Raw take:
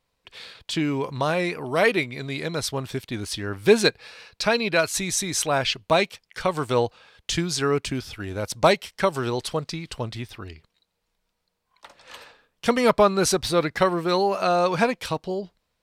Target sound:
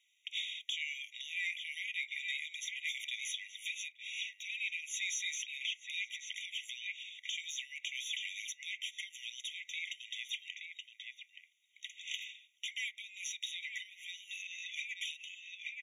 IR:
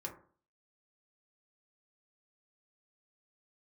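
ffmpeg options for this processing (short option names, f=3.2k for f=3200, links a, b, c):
-filter_complex "[0:a]acrossover=split=5100[a][b];[b]acompressor=threshold=-38dB:ratio=4:attack=1:release=60[c];[a][c]amix=inputs=2:normalize=0,bandpass=f=4.1k:t=q:w=0.7:csg=0,asplit=2[d][e];[e]adelay=874.6,volume=-7dB,highshelf=f=4k:g=-19.7[f];[d][f]amix=inputs=2:normalize=0,asplit=2[g][h];[1:a]atrim=start_sample=2205[i];[h][i]afir=irnorm=-1:irlink=0,volume=-5dB[j];[g][j]amix=inputs=2:normalize=0,acompressor=threshold=-34dB:ratio=5,asplit=2[k][l];[l]asoftclip=type=tanh:threshold=-29.5dB,volume=-6dB[m];[k][m]amix=inputs=2:normalize=0,alimiter=level_in=5dB:limit=-24dB:level=0:latency=1:release=194,volume=-5dB,afftfilt=real='re*eq(mod(floor(b*sr/1024/1900),2),1)':imag='im*eq(mod(floor(b*sr/1024/1900),2),1)':win_size=1024:overlap=0.75,volume=3.5dB"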